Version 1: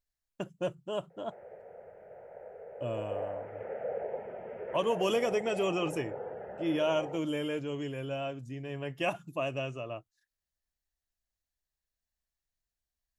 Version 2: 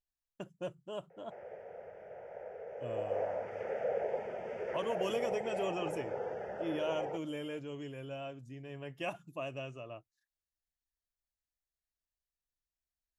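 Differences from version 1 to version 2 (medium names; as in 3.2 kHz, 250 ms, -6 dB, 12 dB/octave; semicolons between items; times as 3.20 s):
speech -7.0 dB; background: remove distance through air 480 m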